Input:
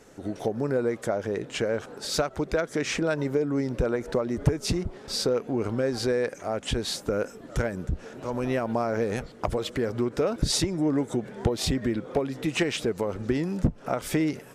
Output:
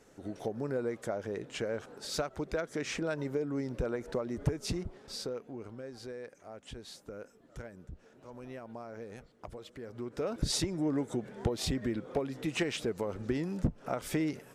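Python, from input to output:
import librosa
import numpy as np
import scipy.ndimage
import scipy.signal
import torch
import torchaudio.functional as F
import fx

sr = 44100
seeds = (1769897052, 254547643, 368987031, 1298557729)

y = fx.gain(x, sr, db=fx.line((4.82, -8.0), (5.76, -18.0), (9.8, -18.0), (10.37, -6.5)))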